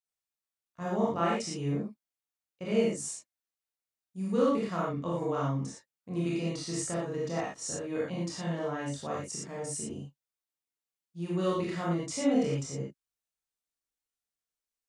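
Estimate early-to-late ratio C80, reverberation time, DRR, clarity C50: 4.0 dB, not exponential, -6.5 dB, 0.0 dB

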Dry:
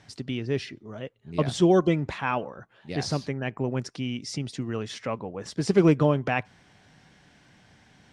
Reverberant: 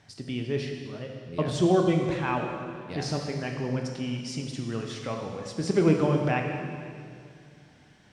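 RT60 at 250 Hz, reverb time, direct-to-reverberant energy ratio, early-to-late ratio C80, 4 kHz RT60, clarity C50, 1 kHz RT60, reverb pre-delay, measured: 2.8 s, 2.3 s, 2.0 dB, 5.0 dB, 2.1 s, 3.5 dB, 2.1 s, 15 ms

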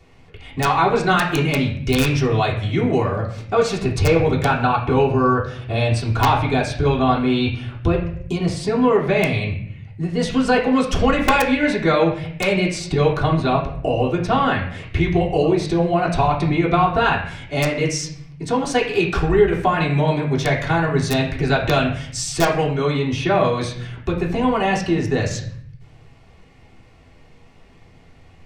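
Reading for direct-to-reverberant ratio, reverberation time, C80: -6.5 dB, 0.60 s, 10.0 dB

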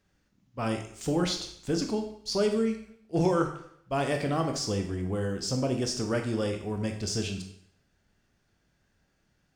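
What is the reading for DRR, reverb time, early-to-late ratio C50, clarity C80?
4.0 dB, 0.65 s, 8.0 dB, 11.0 dB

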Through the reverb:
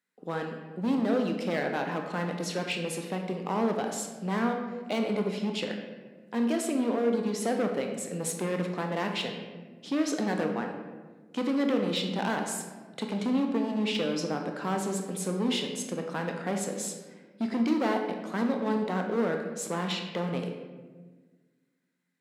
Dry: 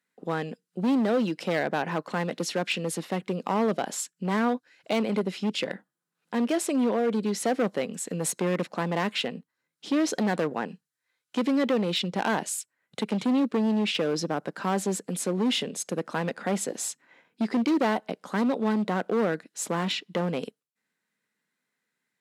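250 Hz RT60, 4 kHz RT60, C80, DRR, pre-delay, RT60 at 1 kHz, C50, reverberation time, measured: 2.2 s, 0.80 s, 7.0 dB, 3.0 dB, 21 ms, 1.2 s, 5.0 dB, 1.4 s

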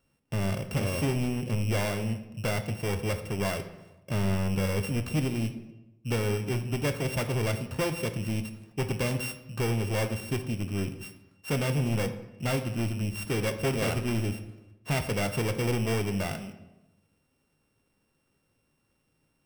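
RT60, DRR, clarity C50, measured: 1.0 s, 7.0 dB, 11.0 dB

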